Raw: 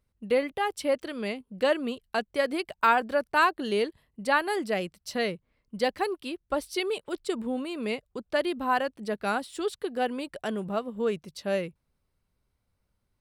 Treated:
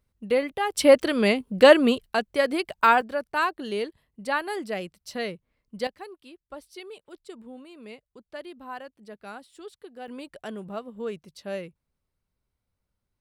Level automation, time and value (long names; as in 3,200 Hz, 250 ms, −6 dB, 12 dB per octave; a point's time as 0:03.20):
+1.5 dB
from 0:00.75 +11 dB
from 0:02.06 +3.5 dB
from 0:03.01 −2.5 dB
from 0:05.87 −12.5 dB
from 0:10.08 −5 dB